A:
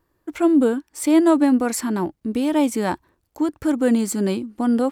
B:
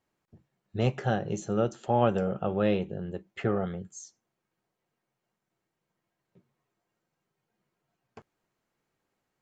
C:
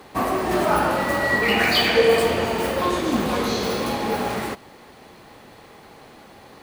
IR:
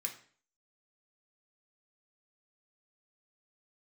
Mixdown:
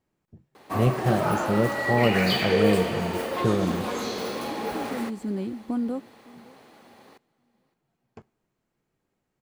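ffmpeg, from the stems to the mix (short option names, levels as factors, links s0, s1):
-filter_complex "[0:a]acrossover=split=3800[s0][s1];[s1]acompressor=threshold=0.0112:ratio=4:attack=1:release=60[s2];[s0][s2]amix=inputs=2:normalize=0,acompressor=threshold=0.0794:ratio=6,adelay=1100,volume=0.316,asplit=2[s3][s4];[s4]volume=0.0668[s5];[1:a]volume=0.75,asplit=3[s6][s7][s8];[s7]volume=0.188[s9];[2:a]highpass=f=600:p=1,adelay=550,volume=0.447,asplit=2[s10][s11];[s11]volume=0.0708[s12];[s8]apad=whole_len=265415[s13];[s3][s13]sidechaincompress=threshold=0.00562:ratio=8:attack=16:release=1320[s14];[3:a]atrim=start_sample=2205[s15];[s9][s15]afir=irnorm=-1:irlink=0[s16];[s5][s12]amix=inputs=2:normalize=0,aecho=0:1:563|1126|1689|2252:1|0.26|0.0676|0.0176[s17];[s14][s6][s10][s16][s17]amix=inputs=5:normalize=0,lowshelf=f=460:g=10"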